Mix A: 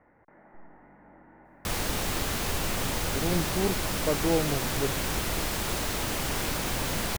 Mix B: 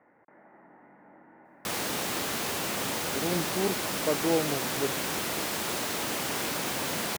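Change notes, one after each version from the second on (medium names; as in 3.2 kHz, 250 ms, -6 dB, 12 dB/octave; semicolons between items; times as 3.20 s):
master: add high-pass 190 Hz 12 dB/octave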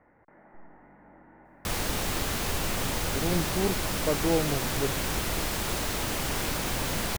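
master: remove high-pass 190 Hz 12 dB/octave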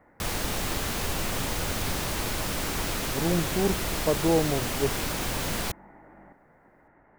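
speech +3.0 dB; background: entry -1.45 s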